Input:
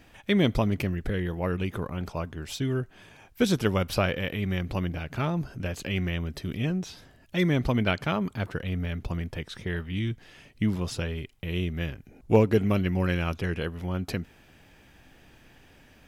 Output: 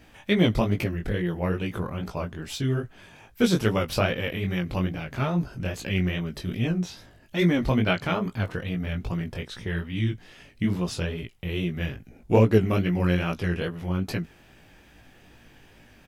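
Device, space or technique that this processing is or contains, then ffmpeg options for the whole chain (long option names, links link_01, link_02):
double-tracked vocal: -filter_complex "[0:a]asplit=2[link_01][link_02];[link_02]adelay=17,volume=-14dB[link_03];[link_01][link_03]amix=inputs=2:normalize=0,flanger=delay=17:depth=5.7:speed=2.4,volume=4.5dB"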